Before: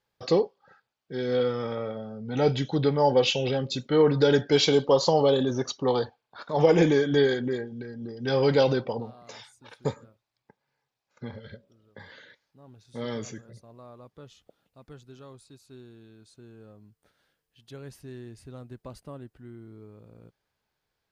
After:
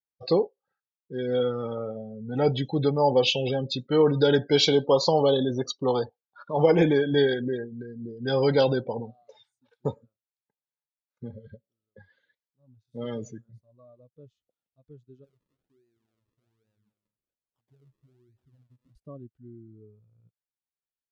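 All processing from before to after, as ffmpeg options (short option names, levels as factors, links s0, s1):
-filter_complex "[0:a]asettb=1/sr,asplit=3[s0][s1][s2];[s0]atrim=end=15.244[s3];[s1]atrim=start=15.24:end=18.95,asetpts=PTS-STARTPTS,afade=t=in:d=0.004:c=qsin,afade=t=out:st=3.706:d=0.004:c=qsin,aecho=1:1:242:0.2,atrim=end_sample=163611,acompressor=threshold=0.00282:ratio=3:attack=3.2:release=140:knee=1:detection=peak,acrusher=samples=40:mix=1:aa=0.000001:lfo=1:lforange=40:lforate=1.2[s4];[s2]atrim=start=18.946[s5];[s3][s4]acrossfade=d=0.004:c1=hsin:c2=qsin[s6];[s6][s5]acrossfade=d=0.004:c1=qsin:c2=hsin,afftdn=nr=26:nf=-35,equalizer=f=3700:t=o:w=0.77:g=3"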